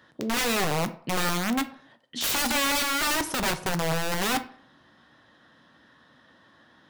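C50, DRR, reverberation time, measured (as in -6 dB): 15.0 dB, 9.5 dB, 0.55 s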